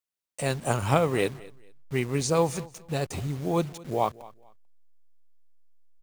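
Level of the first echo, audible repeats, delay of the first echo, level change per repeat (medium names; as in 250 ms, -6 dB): -21.0 dB, 2, 221 ms, -12.0 dB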